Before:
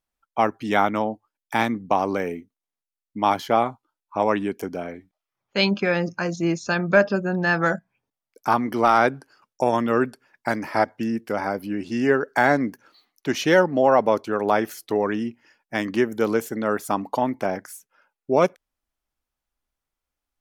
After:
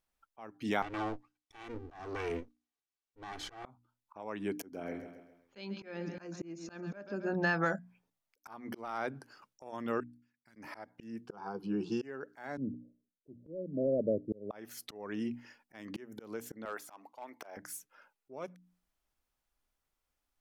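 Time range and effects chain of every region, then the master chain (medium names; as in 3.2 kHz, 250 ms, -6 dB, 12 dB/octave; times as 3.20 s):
0.82–3.65 s: comb filter that takes the minimum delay 2.6 ms + low-pass 7.8 kHz + compression 2.5:1, threshold -30 dBFS
4.60–7.34 s: dynamic bell 300 Hz, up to +7 dB, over -35 dBFS, Q 1.5 + feedback delay 134 ms, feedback 43%, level -16 dB
10.00–10.56 s: amplifier tone stack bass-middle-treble 6-0-2 + level held to a coarse grid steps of 21 dB
11.26–12.02 s: distance through air 120 m + static phaser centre 400 Hz, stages 8
12.57–14.51 s: steep low-pass 620 Hz 96 dB/octave + bass shelf 240 Hz +10.5 dB + three bands expanded up and down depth 100%
16.65–17.57 s: de-esser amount 80% + high-pass 570 Hz + hard clipper -16.5 dBFS
whole clip: hum notches 60/120/180/240/300 Hz; compression 5:1, threshold -28 dBFS; slow attack 470 ms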